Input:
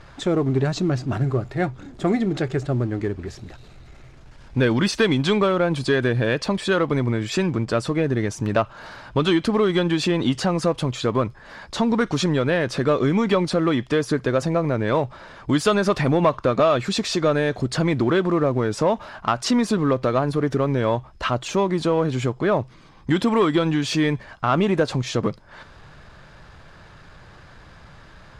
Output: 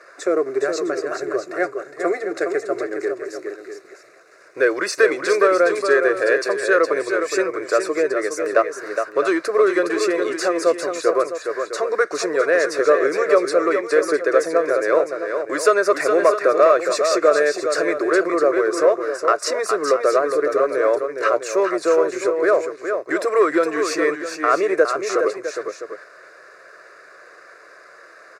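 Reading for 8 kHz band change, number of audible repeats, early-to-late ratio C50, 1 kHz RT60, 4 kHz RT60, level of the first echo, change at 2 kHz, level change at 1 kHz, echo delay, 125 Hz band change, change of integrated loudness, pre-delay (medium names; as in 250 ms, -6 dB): +4.5 dB, 2, no reverb, no reverb, no reverb, -6.5 dB, +6.0 dB, +3.5 dB, 413 ms, under -25 dB, +2.5 dB, no reverb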